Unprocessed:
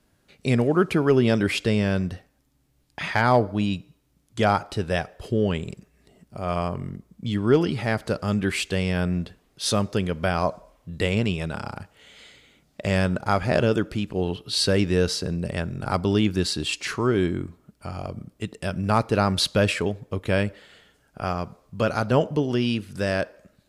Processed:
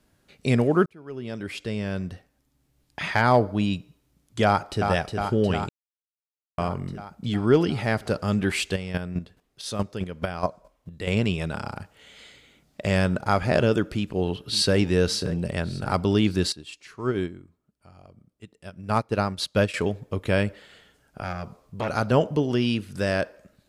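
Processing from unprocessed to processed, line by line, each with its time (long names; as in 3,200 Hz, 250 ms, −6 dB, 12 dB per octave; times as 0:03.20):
0:00.86–0:02.99: fade in
0:04.45–0:04.88: delay throw 360 ms, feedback 75%, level −5 dB
0:05.69–0:06.58: silence
0:08.73–0:11.10: square-wave tremolo 4.7 Hz, depth 65%, duty 15%
0:13.83–0:14.76: delay throw 570 ms, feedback 45%, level −14.5 dB
0:16.52–0:19.74: expander for the loud parts 2.5 to 1, over −29 dBFS
0:21.22–0:21.89: saturating transformer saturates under 1,100 Hz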